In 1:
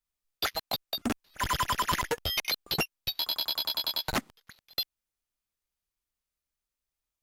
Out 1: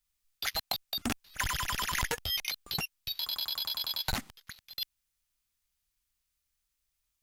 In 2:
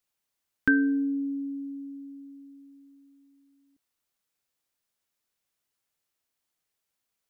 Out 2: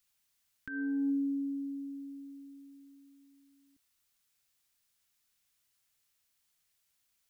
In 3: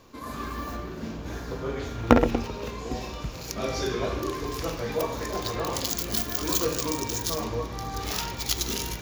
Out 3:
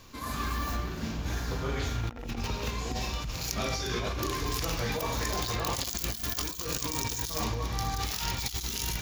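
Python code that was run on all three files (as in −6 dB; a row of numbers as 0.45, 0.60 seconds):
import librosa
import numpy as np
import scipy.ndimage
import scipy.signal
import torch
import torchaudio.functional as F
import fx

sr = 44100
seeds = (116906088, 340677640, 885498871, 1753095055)

y = fx.peak_eq(x, sr, hz=470.0, db=-10.5, octaves=2.8)
y = fx.over_compress(y, sr, threshold_db=-36.0, ratio=-1.0)
y = fx.dynamic_eq(y, sr, hz=780.0, q=3.7, threshold_db=-58.0, ratio=4.0, max_db=4)
y = F.gain(torch.from_numpy(y), 3.5).numpy()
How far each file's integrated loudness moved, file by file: −2.5, −8.0, −3.5 LU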